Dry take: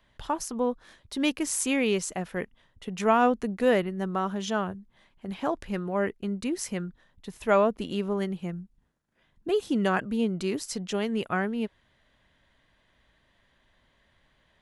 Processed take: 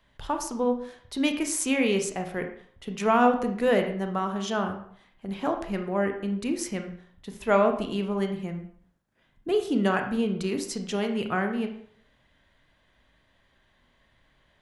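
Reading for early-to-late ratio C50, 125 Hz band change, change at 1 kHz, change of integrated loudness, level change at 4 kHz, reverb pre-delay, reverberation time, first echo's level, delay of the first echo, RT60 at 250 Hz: 8.5 dB, +1.0 dB, +1.5 dB, +1.0 dB, +1.0 dB, 26 ms, 0.60 s, no echo audible, no echo audible, 0.50 s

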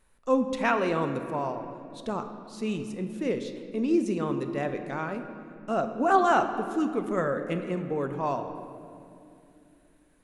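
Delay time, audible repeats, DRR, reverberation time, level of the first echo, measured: no echo audible, no echo audible, 6.5 dB, 2.7 s, no echo audible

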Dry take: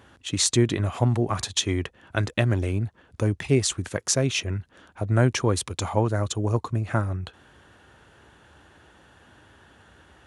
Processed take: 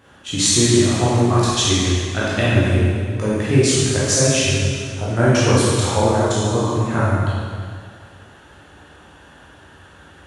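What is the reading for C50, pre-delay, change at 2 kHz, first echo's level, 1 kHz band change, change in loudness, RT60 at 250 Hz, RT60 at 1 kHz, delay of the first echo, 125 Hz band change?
−4.0 dB, 6 ms, +8.5 dB, no echo audible, +9.5 dB, +8.0 dB, 2.0 s, 2.0 s, no echo audible, +6.5 dB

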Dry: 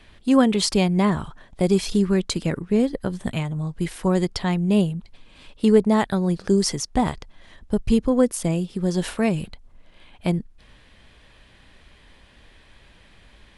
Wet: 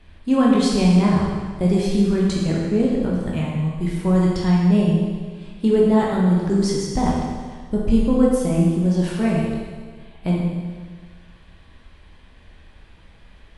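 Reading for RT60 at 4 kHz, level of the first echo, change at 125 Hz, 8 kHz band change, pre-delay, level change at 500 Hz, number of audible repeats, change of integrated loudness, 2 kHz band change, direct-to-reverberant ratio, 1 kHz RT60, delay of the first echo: 1.6 s, no echo audible, +5.0 dB, −4.0 dB, 12 ms, +1.0 dB, no echo audible, +2.5 dB, −0.5 dB, −4.5 dB, 1.6 s, no echo audible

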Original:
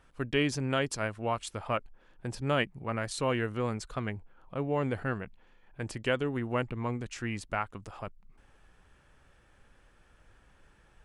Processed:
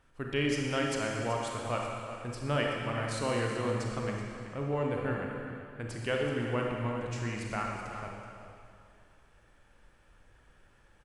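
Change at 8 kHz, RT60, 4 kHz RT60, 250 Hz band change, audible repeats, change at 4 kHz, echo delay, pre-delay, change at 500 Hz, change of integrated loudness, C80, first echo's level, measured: −0.5 dB, 2.3 s, 2.2 s, −0.5 dB, 1, −0.5 dB, 378 ms, 30 ms, +0.5 dB, −0.5 dB, 1.5 dB, −12.5 dB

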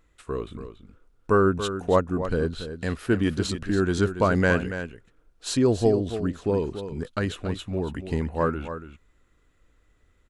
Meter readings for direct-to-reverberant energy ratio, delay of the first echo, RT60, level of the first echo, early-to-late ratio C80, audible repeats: no reverb audible, 283 ms, no reverb audible, −10.5 dB, no reverb audible, 1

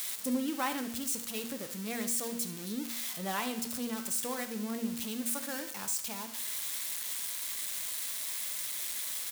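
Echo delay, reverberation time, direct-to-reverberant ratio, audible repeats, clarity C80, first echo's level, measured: 72 ms, 0.70 s, 7.0 dB, 1, 14.5 dB, −14.0 dB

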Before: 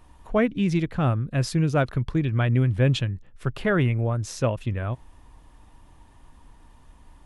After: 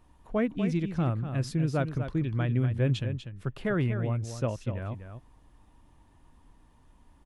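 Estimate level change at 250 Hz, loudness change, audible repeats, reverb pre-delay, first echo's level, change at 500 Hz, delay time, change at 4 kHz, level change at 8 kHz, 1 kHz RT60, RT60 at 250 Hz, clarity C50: −4.5 dB, −5.5 dB, 1, no reverb audible, −9.0 dB, −6.0 dB, 244 ms, −8.5 dB, −8.5 dB, no reverb audible, no reverb audible, no reverb audible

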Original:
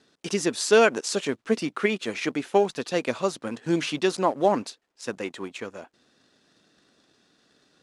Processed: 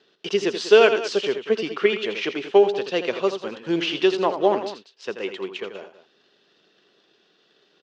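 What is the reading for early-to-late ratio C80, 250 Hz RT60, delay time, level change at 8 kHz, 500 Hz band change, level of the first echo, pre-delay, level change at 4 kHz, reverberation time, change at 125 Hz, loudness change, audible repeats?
no reverb audible, no reverb audible, 83 ms, can't be measured, +5.0 dB, −9.5 dB, no reverb audible, +5.0 dB, no reverb audible, −4.0 dB, +3.5 dB, 2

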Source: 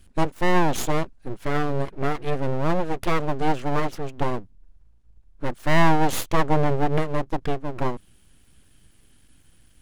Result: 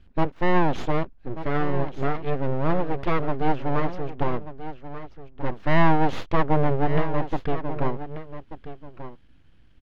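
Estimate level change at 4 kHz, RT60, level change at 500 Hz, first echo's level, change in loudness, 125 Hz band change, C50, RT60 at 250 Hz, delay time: −5.5 dB, no reverb audible, −0.5 dB, −12.5 dB, −1.0 dB, 0.0 dB, no reverb audible, no reverb audible, 1,186 ms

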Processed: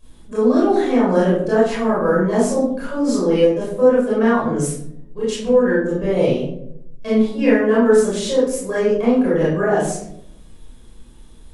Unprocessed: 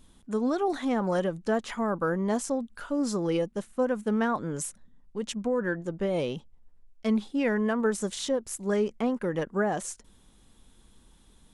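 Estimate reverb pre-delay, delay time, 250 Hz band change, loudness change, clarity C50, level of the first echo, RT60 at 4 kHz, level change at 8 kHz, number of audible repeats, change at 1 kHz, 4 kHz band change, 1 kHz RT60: 22 ms, no echo audible, +11.0 dB, +11.5 dB, 0.0 dB, no echo audible, 0.40 s, +7.0 dB, no echo audible, +9.0 dB, +8.0 dB, 0.60 s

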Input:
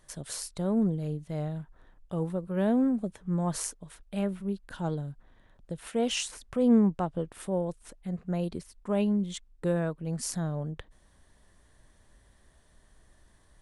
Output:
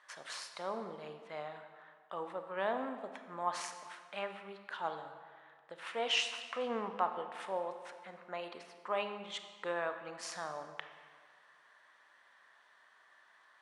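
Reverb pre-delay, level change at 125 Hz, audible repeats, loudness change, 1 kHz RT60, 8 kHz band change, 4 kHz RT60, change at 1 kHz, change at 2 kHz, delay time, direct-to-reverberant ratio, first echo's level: 26 ms, −27.0 dB, no echo audible, −9.0 dB, 1.8 s, −11.0 dB, 1.3 s, +2.0 dB, +3.5 dB, no echo audible, 7.0 dB, no echo audible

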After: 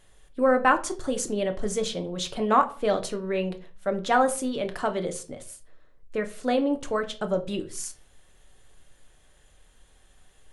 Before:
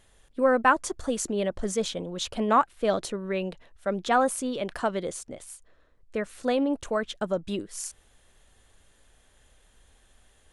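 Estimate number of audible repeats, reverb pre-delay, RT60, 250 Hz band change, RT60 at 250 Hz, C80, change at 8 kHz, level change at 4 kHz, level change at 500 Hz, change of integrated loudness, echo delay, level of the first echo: no echo audible, 5 ms, 0.40 s, +1.0 dB, 0.50 s, 20.5 dB, +0.5 dB, +1.0 dB, +1.0 dB, +1.0 dB, no echo audible, no echo audible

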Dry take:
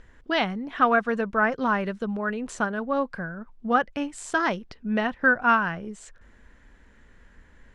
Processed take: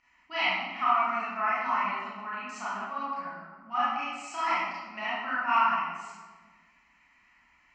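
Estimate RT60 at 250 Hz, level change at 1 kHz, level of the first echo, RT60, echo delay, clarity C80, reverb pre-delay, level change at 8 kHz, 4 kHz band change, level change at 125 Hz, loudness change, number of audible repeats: 1.7 s, −1.0 dB, no echo audible, 1.4 s, no echo audible, 0.5 dB, 27 ms, −7.0 dB, −0.5 dB, below −15 dB, −4.0 dB, no echo audible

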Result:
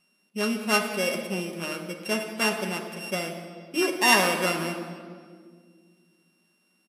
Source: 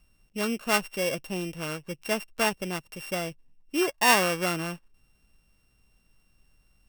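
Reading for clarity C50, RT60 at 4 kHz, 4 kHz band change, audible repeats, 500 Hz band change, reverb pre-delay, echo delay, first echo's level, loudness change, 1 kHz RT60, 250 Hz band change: 5.5 dB, 1.4 s, +2.5 dB, 1, +1.5 dB, 5 ms, 174 ms, −17.5 dB, +1.5 dB, 1.7 s, +2.5 dB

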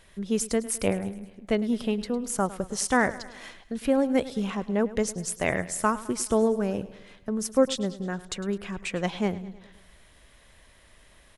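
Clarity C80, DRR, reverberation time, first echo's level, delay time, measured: no reverb audible, no reverb audible, no reverb audible, −17.0 dB, 105 ms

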